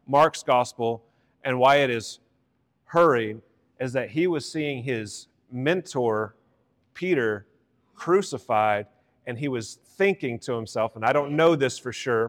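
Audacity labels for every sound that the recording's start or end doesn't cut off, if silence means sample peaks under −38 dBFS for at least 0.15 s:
1.440000	2.150000	sound
2.910000	3.390000	sound
3.800000	5.220000	sound
5.530000	6.280000	sound
6.970000	7.400000	sound
8.000000	8.830000	sound
9.270000	9.740000	sound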